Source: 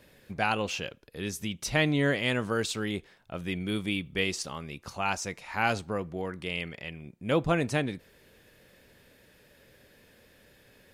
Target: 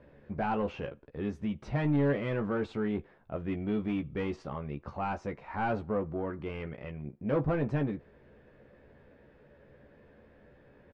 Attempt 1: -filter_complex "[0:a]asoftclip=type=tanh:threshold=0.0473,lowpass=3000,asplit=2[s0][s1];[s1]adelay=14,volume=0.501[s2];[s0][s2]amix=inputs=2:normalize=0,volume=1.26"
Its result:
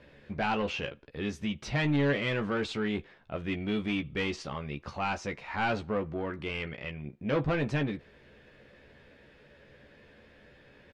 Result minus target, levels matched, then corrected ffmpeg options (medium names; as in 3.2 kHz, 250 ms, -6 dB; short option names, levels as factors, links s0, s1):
4 kHz band +12.5 dB
-filter_complex "[0:a]asoftclip=type=tanh:threshold=0.0473,lowpass=1200,asplit=2[s0][s1];[s1]adelay=14,volume=0.501[s2];[s0][s2]amix=inputs=2:normalize=0,volume=1.26"